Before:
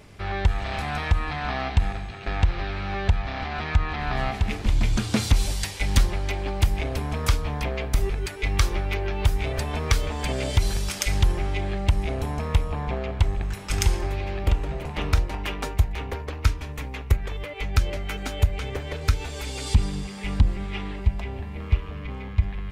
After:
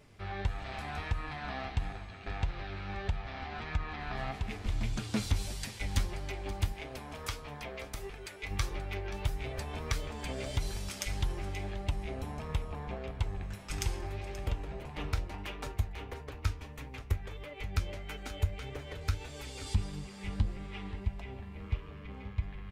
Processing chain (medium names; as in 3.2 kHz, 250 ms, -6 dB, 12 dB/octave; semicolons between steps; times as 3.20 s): delay 530 ms -15.5 dB; flange 1.6 Hz, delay 6.4 ms, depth 5.2 ms, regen +58%; 6.72–8.51 s: bass shelf 250 Hz -9.5 dB; trim -6.5 dB